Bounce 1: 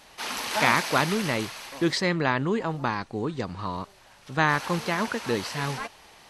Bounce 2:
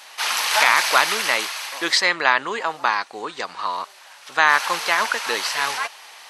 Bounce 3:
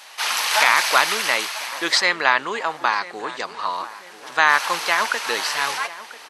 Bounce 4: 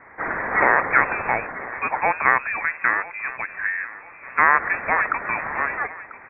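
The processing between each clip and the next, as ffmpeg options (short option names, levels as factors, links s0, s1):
-af "highpass=880,alimiter=level_in=3.76:limit=0.891:release=50:level=0:latency=1,volume=0.891"
-filter_complex "[0:a]asplit=2[s0][s1];[s1]adelay=992,lowpass=f=1700:p=1,volume=0.168,asplit=2[s2][s3];[s3]adelay=992,lowpass=f=1700:p=1,volume=0.53,asplit=2[s4][s5];[s5]adelay=992,lowpass=f=1700:p=1,volume=0.53,asplit=2[s6][s7];[s7]adelay=992,lowpass=f=1700:p=1,volume=0.53,asplit=2[s8][s9];[s9]adelay=992,lowpass=f=1700:p=1,volume=0.53[s10];[s0][s2][s4][s6][s8][s10]amix=inputs=6:normalize=0"
-af "lowpass=f=2400:t=q:w=0.5098,lowpass=f=2400:t=q:w=0.6013,lowpass=f=2400:t=q:w=0.9,lowpass=f=2400:t=q:w=2.563,afreqshift=-2800"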